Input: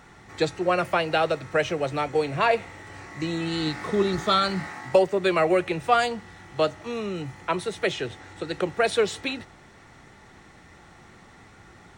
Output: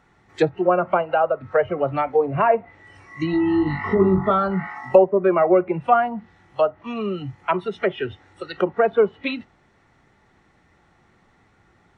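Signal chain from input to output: treble shelf 4.7 kHz -9 dB; 3.31–4.31 s: flutter echo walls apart 3.6 m, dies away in 0.29 s; low-pass that closes with the level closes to 1.2 kHz, closed at -20.5 dBFS; spectral noise reduction 14 dB; trim +6 dB

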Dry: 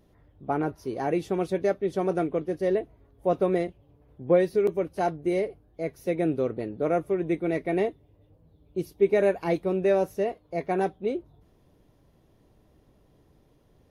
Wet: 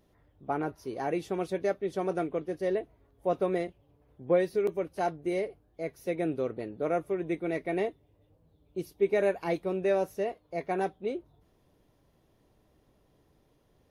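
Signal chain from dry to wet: bass shelf 440 Hz -5 dB; trim -2 dB

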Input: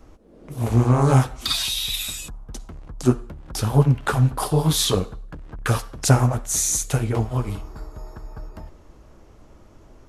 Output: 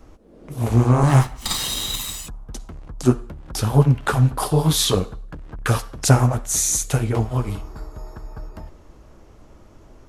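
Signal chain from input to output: 1.03–2.27 s: comb filter that takes the minimum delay 1 ms; trim +1.5 dB

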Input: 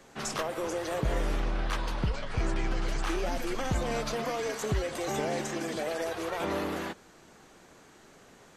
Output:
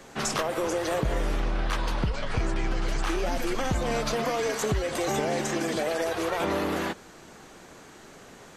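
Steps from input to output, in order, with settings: compression 3:1, threshold -31 dBFS, peak gain reduction 6 dB; trim +7 dB

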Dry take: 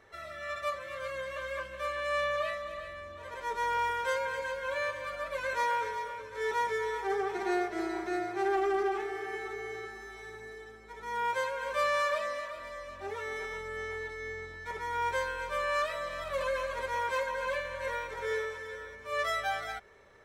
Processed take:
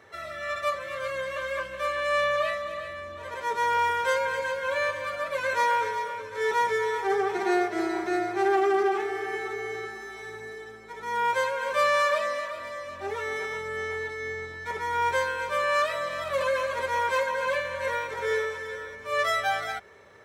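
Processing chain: high-pass 76 Hz 24 dB/octave; trim +6 dB

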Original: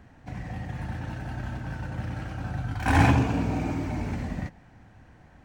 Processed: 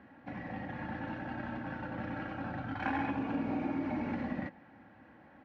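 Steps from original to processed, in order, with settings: high-pass 190 Hz 12 dB/octave; peaking EQ 1.7 kHz +2 dB; comb 3.6 ms, depth 42%; compression 16:1, threshold -29 dBFS, peak gain reduction 13.5 dB; distance through air 330 m

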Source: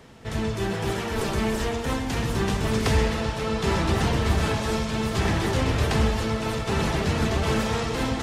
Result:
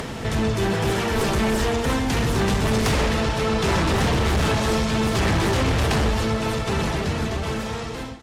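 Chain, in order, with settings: fade out at the end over 2.48 s; upward compressor, threshold -27 dBFS; sine folder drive 8 dB, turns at -11.5 dBFS; trim -5 dB

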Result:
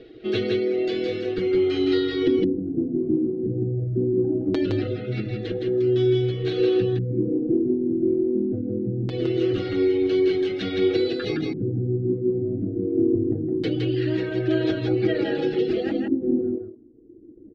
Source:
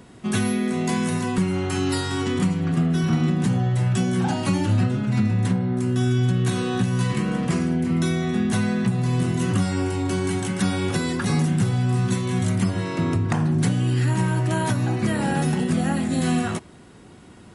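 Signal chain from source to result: distance through air 250 m; reverberation RT60 1.6 s, pre-delay 4 ms, DRR 15.5 dB; reverb removal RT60 1.6 s; peaking EQ 390 Hz +12 dB 0.68 oct; static phaser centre 410 Hz, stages 4; LFO low-pass square 0.22 Hz 270–4100 Hz; comb 6.3 ms, depth 65%; delay 164 ms -3.5 dB; endings held to a fixed fall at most 150 dB/s

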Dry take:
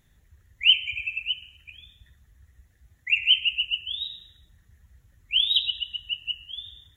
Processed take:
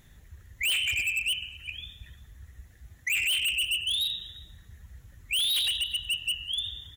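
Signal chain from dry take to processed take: saturation -24 dBFS, distortion -6 dB; on a send: delay 352 ms -24 dB; on the sum: overload inside the chain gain 32.5 dB; trim +7.5 dB

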